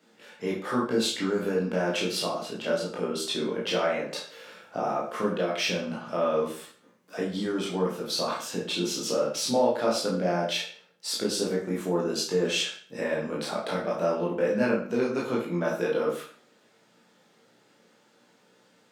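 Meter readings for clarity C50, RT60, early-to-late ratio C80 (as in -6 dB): 5.0 dB, 0.45 s, 9.5 dB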